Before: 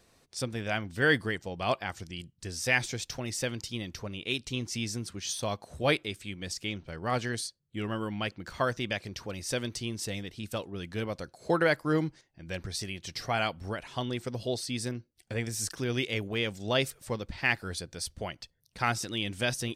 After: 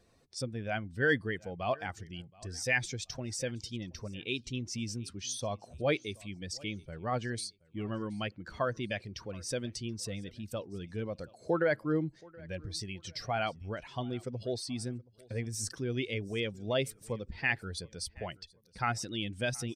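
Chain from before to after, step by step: spectral contrast raised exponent 1.5; feedback echo 0.725 s, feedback 32%, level -24 dB; gain -3 dB

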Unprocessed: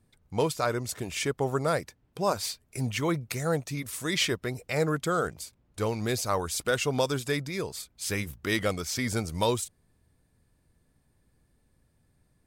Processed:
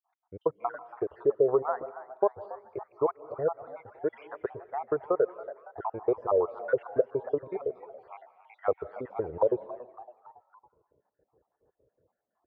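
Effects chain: random spectral dropouts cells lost 69%; HPF 84 Hz; compressor 3:1, threshold -31 dBFS, peak gain reduction 7 dB; LPF 1100 Hz 24 dB/oct; resonant low shelf 310 Hz -11 dB, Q 3; frequency-shifting echo 0.279 s, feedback 51%, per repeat +120 Hz, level -17 dB; digital reverb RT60 0.79 s, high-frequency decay 0.95×, pre-delay 0.12 s, DRR 18.5 dB; gain +6.5 dB

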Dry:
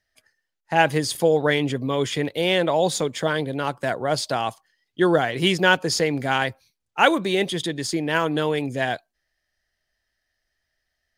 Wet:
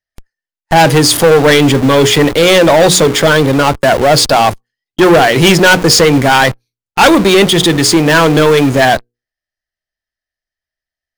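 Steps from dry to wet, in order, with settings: notches 60/120/180/240/300/360/420/480 Hz; sample leveller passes 5; in parallel at -10.5 dB: Schmitt trigger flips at -25.5 dBFS; on the sum: gain -1 dB

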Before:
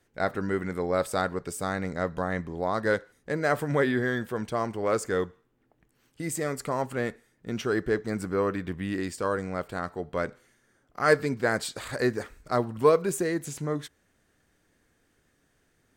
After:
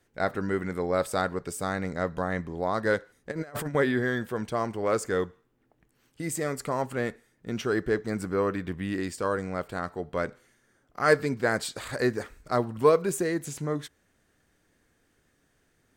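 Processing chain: 3.31–3.75 negative-ratio compressor -33 dBFS, ratio -0.5

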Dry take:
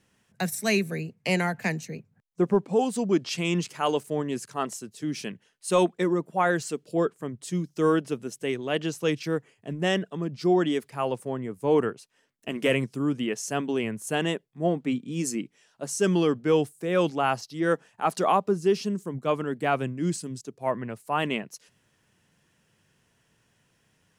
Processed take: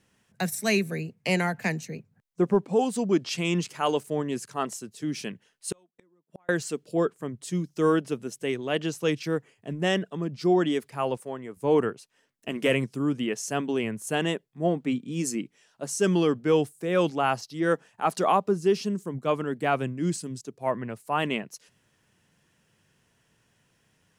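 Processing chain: 5.72–6.49 flipped gate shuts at -27 dBFS, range -41 dB; 11.17–11.57 low shelf 280 Hz -12 dB

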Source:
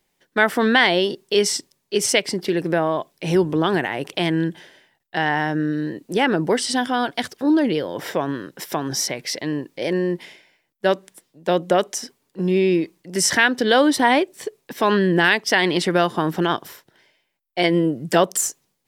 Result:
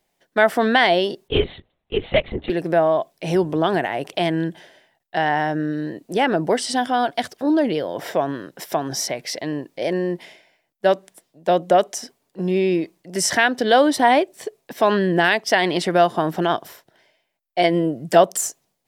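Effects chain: bell 670 Hz +9 dB 0.47 oct; 1.28–2.5 LPC vocoder at 8 kHz whisper; gain -2 dB

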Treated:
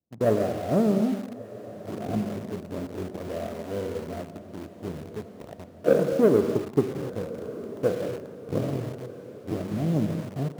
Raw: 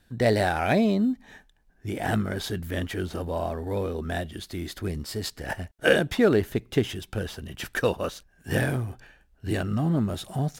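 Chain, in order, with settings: steep low-pass 710 Hz 96 dB/oct; power-law curve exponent 1.4; non-linear reverb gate 0.31 s flat, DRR 5.5 dB; in parallel at -7 dB: requantised 6-bit, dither none; on the sum: HPF 110 Hz 12 dB/oct; diffused feedback echo 1.281 s, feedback 51%, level -15 dB

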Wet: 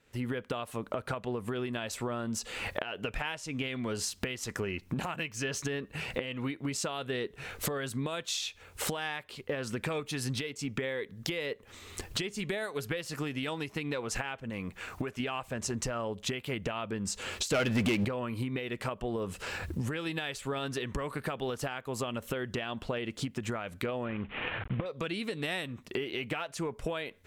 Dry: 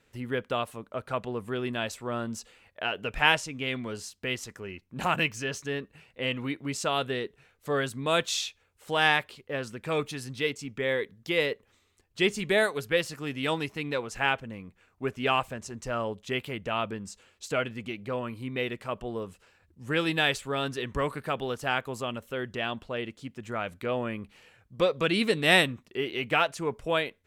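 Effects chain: 24.05–24.86 CVSD 16 kbps; recorder AGC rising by 48 dB/s; 14.5–15.2 low shelf 500 Hz -6 dB; compressor 5:1, threshold -29 dBFS, peak gain reduction 16.5 dB; 17.52–18.05 sample leveller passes 3; gain -3 dB

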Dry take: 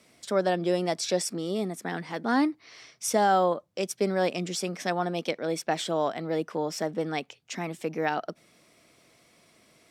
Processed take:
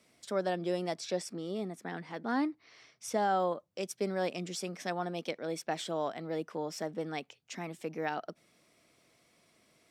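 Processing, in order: 0.94–3.4 high shelf 5900 Hz -8.5 dB; gain -7 dB

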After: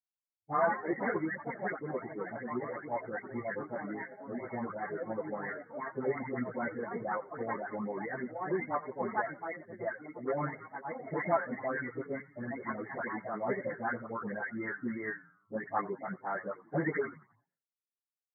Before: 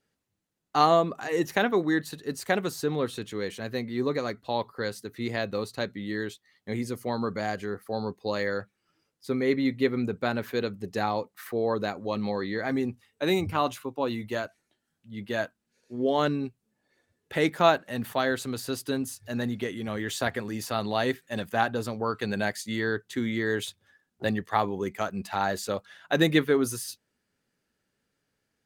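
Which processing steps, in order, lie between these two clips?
spectral delay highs late, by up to 0.551 s; echoes that change speed 0.287 s, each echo +4 st, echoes 2, each echo -6 dB; expander -33 dBFS; reverb removal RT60 0.66 s; bell 250 Hz -3 dB 2.4 oct; soft clip -17.5 dBFS, distortion -18 dB; plain phase-vocoder stretch 0.64×; frequency-shifting echo 87 ms, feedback 46%, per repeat -130 Hz, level -18 dB; FFT band-pass 100–2200 Hz

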